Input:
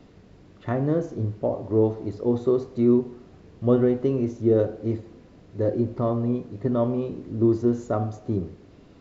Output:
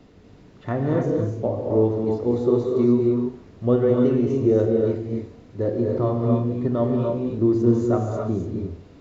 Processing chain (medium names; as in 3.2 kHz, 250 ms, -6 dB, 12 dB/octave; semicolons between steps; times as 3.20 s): gated-style reverb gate 310 ms rising, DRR 0.5 dB